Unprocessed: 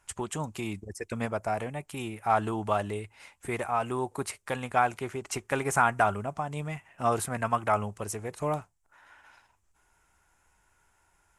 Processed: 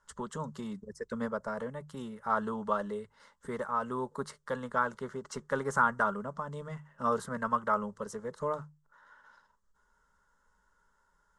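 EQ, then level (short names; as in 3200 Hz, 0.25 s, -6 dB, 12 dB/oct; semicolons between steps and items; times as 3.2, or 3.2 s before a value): LPF 4600 Hz 12 dB/oct; notches 50/100/150 Hz; fixed phaser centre 490 Hz, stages 8; 0.0 dB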